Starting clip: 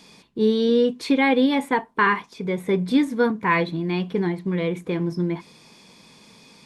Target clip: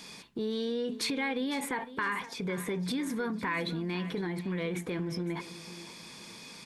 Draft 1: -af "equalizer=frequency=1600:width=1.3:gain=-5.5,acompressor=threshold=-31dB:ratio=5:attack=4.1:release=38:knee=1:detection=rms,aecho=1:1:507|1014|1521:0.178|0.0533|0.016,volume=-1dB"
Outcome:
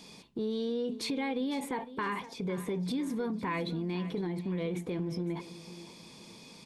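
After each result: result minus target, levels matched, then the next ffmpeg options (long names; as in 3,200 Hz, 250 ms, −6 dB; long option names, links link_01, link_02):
2,000 Hz band −5.5 dB; 8,000 Hz band −5.0 dB
-af "equalizer=frequency=1600:width=1.3:gain=5,acompressor=threshold=-31dB:ratio=5:attack=4.1:release=38:knee=1:detection=rms,aecho=1:1:507|1014|1521:0.178|0.0533|0.016,volume=-1dB"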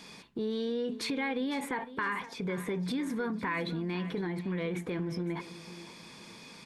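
8,000 Hz band −5.5 dB
-af "equalizer=frequency=1600:width=1.3:gain=5,acompressor=threshold=-31dB:ratio=5:attack=4.1:release=38:knee=1:detection=rms,highshelf=frequency=3900:gain=7,aecho=1:1:507|1014|1521:0.178|0.0533|0.016,volume=-1dB"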